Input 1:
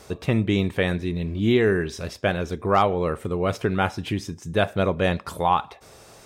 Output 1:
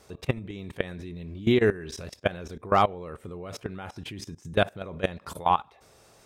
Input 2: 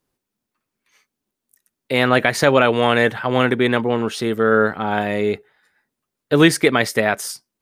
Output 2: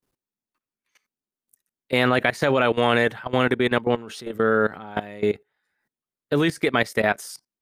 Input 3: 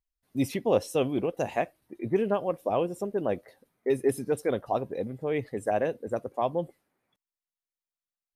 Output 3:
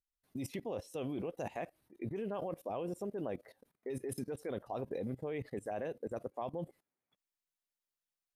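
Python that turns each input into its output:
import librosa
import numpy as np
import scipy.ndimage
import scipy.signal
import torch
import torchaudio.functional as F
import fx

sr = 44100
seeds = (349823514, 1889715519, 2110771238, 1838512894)

y = fx.level_steps(x, sr, step_db=19)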